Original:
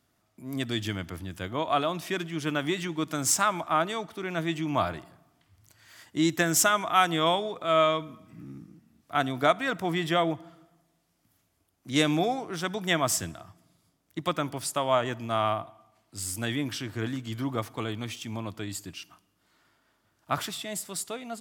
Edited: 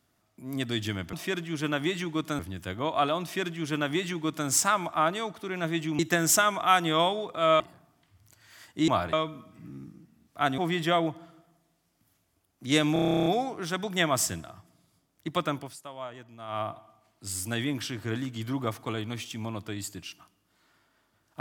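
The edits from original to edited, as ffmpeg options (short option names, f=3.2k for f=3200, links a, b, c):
-filter_complex "[0:a]asplit=21[a][b][c][d][e][f][g][h][i][j][k][l][m][n][o][p][q][r][s][t][u];[a]atrim=end=1.132[v];[b]atrim=start=1.958:end=3.222[w];[c]atrim=start=1.128:end=4.732[x];[d]atrim=start=6.258:end=7.872[y];[e]atrim=start=4.978:end=6.262[z];[f]atrim=start=4.728:end=4.982[aa];[g]atrim=start=7.868:end=9.322[ab];[h]atrim=start=9.818:end=12.202[ac];[i]atrim=start=12.168:end=12.202[ad];[j]atrim=start=12.168:end=12.202[ae];[k]atrim=start=12.168:end=12.202[af];[l]atrim=start=12.168:end=12.202[ag];[m]atrim=start=12.168:end=12.202[ah];[n]atrim=start=12.168:end=12.202[ai];[o]atrim=start=12.168:end=12.202[aj];[p]atrim=start=12.168:end=12.202[ak];[q]atrim=start=12.168:end=12.202[al];[r]atrim=start=12.168:end=12.202[am];[s]atrim=start=12.168:end=14.67,asetpts=PTS-STARTPTS,afade=t=out:st=2.262:d=0.24:silence=0.188365[an];[t]atrim=start=14.67:end=15.38,asetpts=PTS-STARTPTS,volume=-14.5dB[ao];[u]atrim=start=15.38,asetpts=PTS-STARTPTS,afade=t=in:d=0.24:silence=0.188365[ap];[v][w]acrossfade=d=0.004:c1=hsin:c2=hsin[aq];[aq][x]acrossfade=d=0.004:c1=hsin:c2=hsin[ar];[ar][y]acrossfade=d=0.004:c1=hsin:c2=hsin[as];[as][z]acrossfade=d=0.004:c1=hsin:c2=hsin[at];[at][aa]acrossfade=d=0.004:c1=hsin:c2=hsin[au];[au][ab]acrossfade=d=0.004:c1=hsin:c2=hsin[av];[av][ac]acrossfade=d=0.004:c1=hsin:c2=hsin[aw];[aw][ad]acrossfade=d=0.004:c1=hsin:c2=hsin[ax];[ax][ae]acrossfade=d=0.004:c1=hsin:c2=hsin[ay];[ay][af]acrossfade=d=0.004:c1=hsin:c2=hsin[az];[az][ag]acrossfade=d=0.004:c1=hsin:c2=hsin[ba];[ba][ah]acrossfade=d=0.004:c1=hsin:c2=hsin[bb];[bb][ai]acrossfade=d=0.004:c1=hsin:c2=hsin[bc];[bc][aj]acrossfade=d=0.004:c1=hsin:c2=hsin[bd];[bd][ak]acrossfade=d=0.004:c1=hsin:c2=hsin[be];[be][al]acrossfade=d=0.004:c1=hsin:c2=hsin[bf];[bf][am]acrossfade=d=0.004:c1=hsin:c2=hsin[bg];[an][ao][ap]concat=n=3:v=0:a=1[bh];[bg][bh]acrossfade=d=0.004:c1=hsin:c2=hsin"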